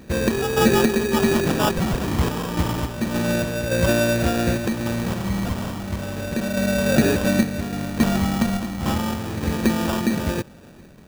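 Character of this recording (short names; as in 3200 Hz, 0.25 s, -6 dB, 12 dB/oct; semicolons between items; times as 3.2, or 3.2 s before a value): random-step tremolo; phasing stages 2, 0.32 Hz, lowest notch 520–1400 Hz; aliases and images of a low sample rate 2100 Hz, jitter 0%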